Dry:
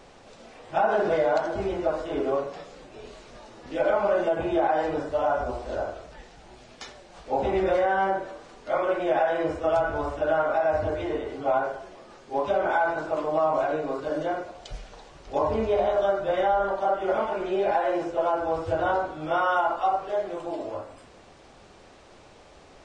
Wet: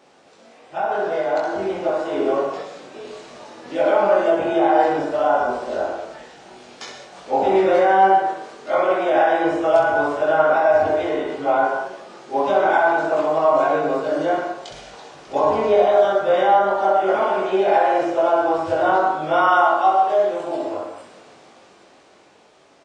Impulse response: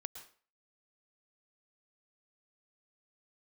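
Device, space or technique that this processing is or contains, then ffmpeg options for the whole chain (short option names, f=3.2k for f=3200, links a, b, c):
far laptop microphone: -filter_complex "[0:a]aecho=1:1:21|65:0.708|0.531[a];[1:a]atrim=start_sample=2205[b];[a][b]afir=irnorm=-1:irlink=0,highpass=190,dynaudnorm=f=160:g=21:m=9dB"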